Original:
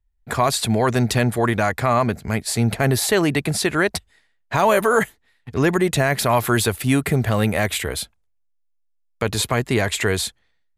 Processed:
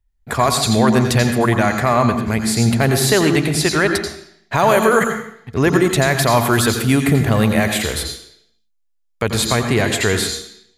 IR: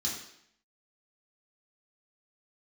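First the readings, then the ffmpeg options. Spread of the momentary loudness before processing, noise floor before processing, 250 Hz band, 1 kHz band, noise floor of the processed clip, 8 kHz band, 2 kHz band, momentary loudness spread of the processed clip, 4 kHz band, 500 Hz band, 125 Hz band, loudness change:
8 LU, -66 dBFS, +5.0 dB, +3.5 dB, -64 dBFS, +4.0 dB, +3.5 dB, 9 LU, +5.0 dB, +3.5 dB, +4.0 dB, +4.0 dB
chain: -filter_complex "[0:a]asplit=2[s0][s1];[1:a]atrim=start_sample=2205,adelay=85[s2];[s1][s2]afir=irnorm=-1:irlink=0,volume=0.335[s3];[s0][s3]amix=inputs=2:normalize=0,volume=1.33"

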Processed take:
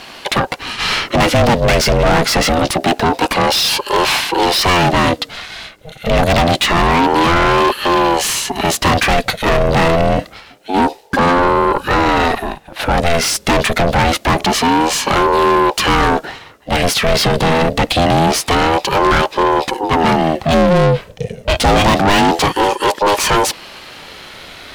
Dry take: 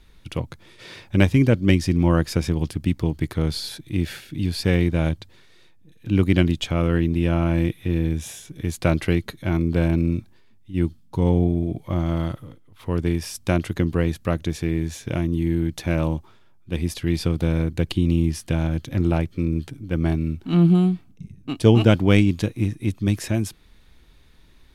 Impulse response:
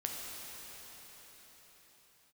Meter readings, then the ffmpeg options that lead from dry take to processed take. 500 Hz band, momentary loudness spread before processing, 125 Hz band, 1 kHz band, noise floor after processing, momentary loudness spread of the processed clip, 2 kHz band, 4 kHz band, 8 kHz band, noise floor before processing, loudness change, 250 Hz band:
+12.0 dB, 13 LU, +0.5 dB, +23.5 dB, -40 dBFS, 9 LU, +16.0 dB, +17.5 dB, +17.5 dB, -51 dBFS, +8.5 dB, +3.5 dB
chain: -filter_complex "[0:a]asplit=2[s0][s1];[s1]highpass=f=720:p=1,volume=89.1,asoftclip=type=tanh:threshold=0.891[s2];[s0][s2]amix=inputs=2:normalize=0,lowpass=f=4300:p=1,volume=0.501,aeval=exprs='val(0)*sin(2*PI*510*n/s+510*0.4/0.26*sin(2*PI*0.26*n/s))':c=same"

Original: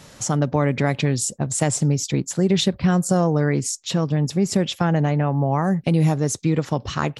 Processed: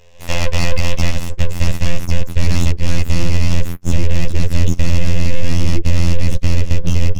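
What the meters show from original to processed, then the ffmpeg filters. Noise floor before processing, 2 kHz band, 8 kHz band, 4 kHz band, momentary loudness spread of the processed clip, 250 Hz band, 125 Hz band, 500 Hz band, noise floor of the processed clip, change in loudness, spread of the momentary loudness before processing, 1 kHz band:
-47 dBFS, +4.0 dB, -4.5 dB, +2.5 dB, 4 LU, -3.5 dB, +4.0 dB, -4.5 dB, -29 dBFS, +1.5 dB, 5 LU, -6.0 dB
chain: -filter_complex "[0:a]lowshelf=f=150:g=5.5,aeval=exprs='(mod(6.68*val(0)+1,2)-1)/6.68':c=same,dynaudnorm=f=130:g=3:m=2.51,afftfilt=real='hypot(re,im)*cos(PI*b)':imag='0':win_size=2048:overlap=0.75,asplit=3[s0][s1][s2];[s0]bandpass=f=270:t=q:w=8,volume=1[s3];[s1]bandpass=f=2290:t=q:w=8,volume=0.501[s4];[s2]bandpass=f=3010:t=q:w=8,volume=0.355[s5];[s3][s4][s5]amix=inputs=3:normalize=0,aeval=exprs='abs(val(0))':c=same,asubboost=boost=11:cutoff=230,alimiter=level_in=5.31:limit=0.891:release=50:level=0:latency=1,volume=0.891"

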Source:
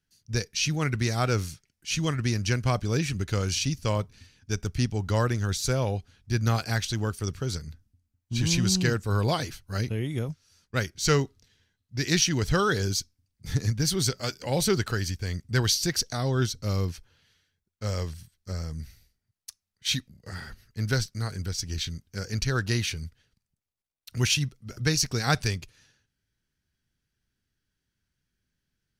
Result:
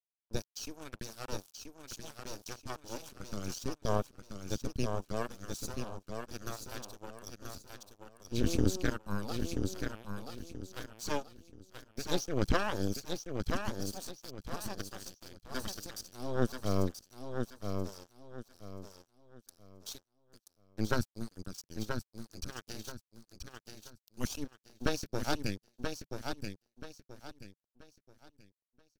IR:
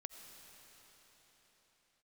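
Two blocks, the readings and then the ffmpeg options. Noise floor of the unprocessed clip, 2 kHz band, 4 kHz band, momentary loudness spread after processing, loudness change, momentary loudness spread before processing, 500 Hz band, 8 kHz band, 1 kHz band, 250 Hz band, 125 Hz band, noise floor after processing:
-83 dBFS, -11.5 dB, -14.0 dB, 18 LU, -11.5 dB, 13 LU, -7.5 dB, -13.5 dB, -7.5 dB, -7.5 dB, -14.5 dB, under -85 dBFS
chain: -filter_complex "[0:a]lowshelf=f=130:g=7,aphaser=in_gain=1:out_gain=1:delay=3.4:decay=0.47:speed=0.24:type=sinusoidal,acrossover=split=3600[s0][s1];[s0]aeval=exprs='0.562*(cos(1*acos(clip(val(0)/0.562,-1,1)))-cos(1*PI/2))+0.2*(cos(3*acos(clip(val(0)/0.562,-1,1)))-cos(3*PI/2))+0.141*(cos(4*acos(clip(val(0)/0.562,-1,1)))-cos(4*PI/2))+0.0112*(cos(5*acos(clip(val(0)/0.562,-1,1)))-cos(5*PI/2))+0.00501*(cos(7*acos(clip(val(0)/0.562,-1,1)))-cos(7*PI/2))':c=same[s2];[s1]alimiter=limit=0.0944:level=0:latency=1:release=227[s3];[s2][s3]amix=inputs=2:normalize=0,aeval=exprs='sgn(val(0))*max(abs(val(0))-0.0158,0)':c=same,equalizer=f=160:t=o:w=0.33:g=-7,equalizer=f=2000:t=o:w=0.33:g=-10,equalizer=f=12500:t=o:w=0.33:g=5,asplit=2[s4][s5];[s5]aecho=0:1:981|1962|2943|3924:0.531|0.159|0.0478|0.0143[s6];[s4][s6]amix=inputs=2:normalize=0,volume=0.398"

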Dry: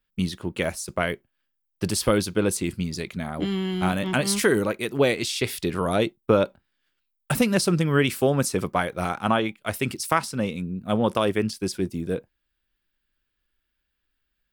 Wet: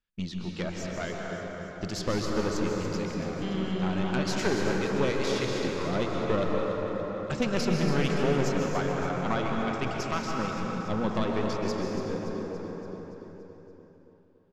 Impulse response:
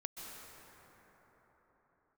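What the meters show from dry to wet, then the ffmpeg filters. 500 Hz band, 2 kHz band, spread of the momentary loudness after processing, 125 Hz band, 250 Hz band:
-4.5 dB, -5.5 dB, 10 LU, -4.0 dB, -4.0 dB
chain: -filter_complex "[0:a]aresample=16000,aresample=44100,aeval=exprs='(tanh(5.62*val(0)+0.65)-tanh(0.65))/5.62':c=same,aecho=1:1:285|570|855|1140|1425|1710|1995:0.316|0.183|0.106|0.0617|0.0358|0.0208|0.012[s0];[1:a]atrim=start_sample=2205[s1];[s0][s1]afir=irnorm=-1:irlink=0"

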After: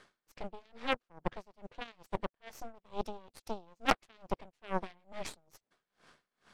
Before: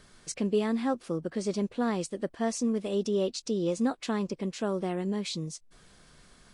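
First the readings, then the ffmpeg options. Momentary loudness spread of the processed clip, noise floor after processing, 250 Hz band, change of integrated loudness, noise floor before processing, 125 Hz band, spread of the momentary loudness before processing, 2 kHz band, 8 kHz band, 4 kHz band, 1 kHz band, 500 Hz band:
16 LU, under -85 dBFS, -16.0 dB, -9.0 dB, -59 dBFS, -12.5 dB, 6 LU, +1.0 dB, -14.0 dB, -4.5 dB, -0.5 dB, -11.5 dB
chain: -af "areverse,acompressor=threshold=0.0141:ratio=5,areverse,bandpass=f=1100:t=q:w=0.51:csg=0,aeval=exprs='0.0316*(cos(1*acos(clip(val(0)/0.0316,-1,1)))-cos(1*PI/2))+0.00891*(cos(3*acos(clip(val(0)/0.0316,-1,1)))-cos(3*PI/2))+0.00708*(cos(4*acos(clip(val(0)/0.0316,-1,1)))-cos(4*PI/2))':c=same,aeval=exprs='val(0)*pow(10,-30*(0.5-0.5*cos(2*PI*2.3*n/s))/20)':c=same,volume=7.5"

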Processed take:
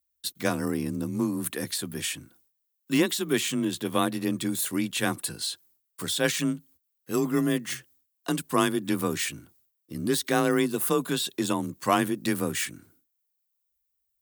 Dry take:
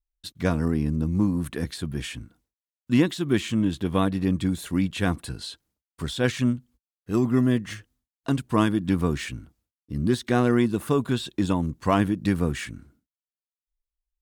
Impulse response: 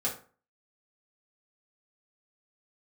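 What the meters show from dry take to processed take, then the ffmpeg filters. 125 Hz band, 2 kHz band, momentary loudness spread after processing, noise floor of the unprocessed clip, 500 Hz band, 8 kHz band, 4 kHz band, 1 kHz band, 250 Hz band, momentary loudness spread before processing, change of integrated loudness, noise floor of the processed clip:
-9.0 dB, +1.5 dB, 8 LU, under -85 dBFS, -1.0 dB, +9.5 dB, +4.0 dB, +0.5 dB, -4.0 dB, 13 LU, -2.5 dB, -78 dBFS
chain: -af "afreqshift=26,aemphasis=mode=production:type=bsi"

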